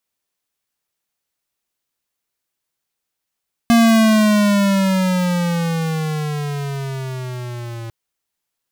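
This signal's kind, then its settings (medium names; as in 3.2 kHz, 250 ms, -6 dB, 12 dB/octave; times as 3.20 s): gliding synth tone square, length 4.20 s, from 234 Hz, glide -12.5 st, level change -19 dB, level -10.5 dB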